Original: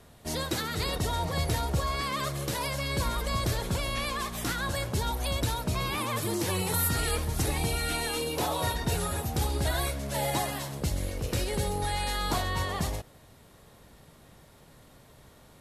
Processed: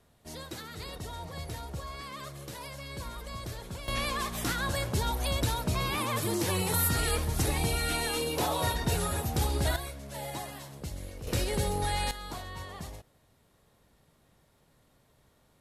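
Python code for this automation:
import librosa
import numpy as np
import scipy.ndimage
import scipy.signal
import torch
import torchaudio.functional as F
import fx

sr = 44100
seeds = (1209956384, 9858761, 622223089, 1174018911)

y = fx.gain(x, sr, db=fx.steps((0.0, -10.5), (3.88, 0.0), (9.76, -9.0), (11.27, 0.0), (12.11, -11.0)))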